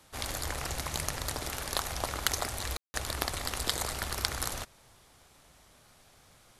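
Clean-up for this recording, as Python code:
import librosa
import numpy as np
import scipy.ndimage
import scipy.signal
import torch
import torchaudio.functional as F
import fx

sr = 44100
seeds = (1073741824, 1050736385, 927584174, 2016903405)

y = fx.fix_declip(x, sr, threshold_db=-7.5)
y = fx.fix_ambience(y, sr, seeds[0], print_start_s=4.95, print_end_s=5.45, start_s=2.77, end_s=2.94)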